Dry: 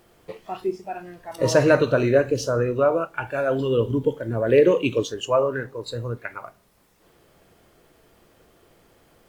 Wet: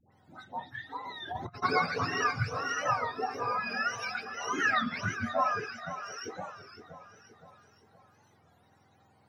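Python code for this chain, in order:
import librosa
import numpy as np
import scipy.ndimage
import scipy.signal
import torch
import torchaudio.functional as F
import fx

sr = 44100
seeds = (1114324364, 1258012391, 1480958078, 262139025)

p1 = fx.octave_mirror(x, sr, pivot_hz=820.0)
p2 = fx.dispersion(p1, sr, late='highs', ms=122.0, hz=940.0)
p3 = p2 + fx.echo_feedback(p2, sr, ms=517, feedback_pct=47, wet_db=-11.5, dry=0)
p4 = fx.vibrato(p3, sr, rate_hz=2.4, depth_cents=23.0)
p5 = fx.high_shelf(p4, sr, hz=8800.0, db=-5.5)
p6 = fx.small_body(p5, sr, hz=(780.0, 3800.0), ring_ms=30, db=14)
p7 = fx.over_compress(p6, sr, threshold_db=-29.0, ratio=-0.5, at=(1.05, 1.62), fade=0.02)
p8 = fx.highpass(p7, sr, hz=410.0, slope=6, at=(5.72, 6.25))
p9 = fx.record_warp(p8, sr, rpm=33.33, depth_cents=160.0)
y = F.gain(torch.from_numpy(p9), -8.0).numpy()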